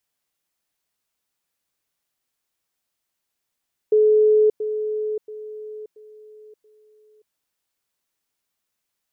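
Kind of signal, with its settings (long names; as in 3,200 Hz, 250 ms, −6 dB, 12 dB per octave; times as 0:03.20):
level staircase 428 Hz −12 dBFS, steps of −10 dB, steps 5, 0.58 s 0.10 s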